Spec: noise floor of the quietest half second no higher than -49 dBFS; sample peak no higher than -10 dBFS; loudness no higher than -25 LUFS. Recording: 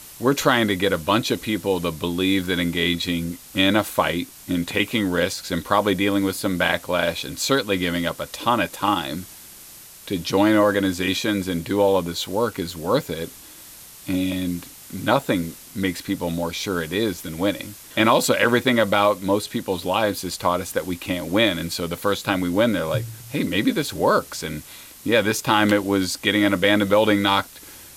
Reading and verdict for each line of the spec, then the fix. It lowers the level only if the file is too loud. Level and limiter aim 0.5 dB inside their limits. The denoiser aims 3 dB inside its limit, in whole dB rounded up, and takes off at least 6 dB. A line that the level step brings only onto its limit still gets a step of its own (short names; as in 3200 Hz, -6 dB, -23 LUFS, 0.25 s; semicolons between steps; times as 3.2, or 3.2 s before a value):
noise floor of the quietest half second -43 dBFS: fail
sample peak -4.0 dBFS: fail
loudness -21.5 LUFS: fail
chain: denoiser 6 dB, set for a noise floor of -43 dBFS; gain -4 dB; limiter -10.5 dBFS